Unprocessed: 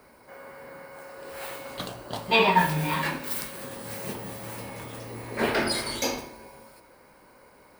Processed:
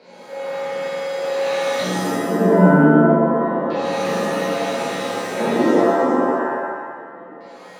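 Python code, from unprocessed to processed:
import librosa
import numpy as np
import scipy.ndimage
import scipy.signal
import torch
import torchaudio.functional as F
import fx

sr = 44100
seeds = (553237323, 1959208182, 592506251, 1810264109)

p1 = fx.rider(x, sr, range_db=4, speed_s=0.5)
p2 = x + (p1 * librosa.db_to_amplitude(-2.5))
p3 = scipy.signal.sosfilt(scipy.signal.butter(4, 150.0, 'highpass', fs=sr, output='sos'), p2)
p4 = fx.high_shelf(p3, sr, hz=3600.0, db=-10.5)
p5 = p4 + fx.echo_single(p4, sr, ms=110, db=-6.0, dry=0)
p6 = fx.env_lowpass_down(p5, sr, base_hz=380.0, full_db=-20.5)
p7 = fx.quant_dither(p6, sr, seeds[0], bits=10, dither='none')
p8 = fx.filter_lfo_lowpass(p7, sr, shape='square', hz=0.27, low_hz=330.0, high_hz=4300.0, q=4.5)
p9 = fx.graphic_eq_31(p8, sr, hz=(200, 500, 1250, 2500), db=(9, 10, -9, 7))
p10 = fx.rev_shimmer(p9, sr, seeds[1], rt60_s=1.2, semitones=7, shimmer_db=-2, drr_db=-7.0)
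y = p10 * librosa.db_to_amplitude(-6.0)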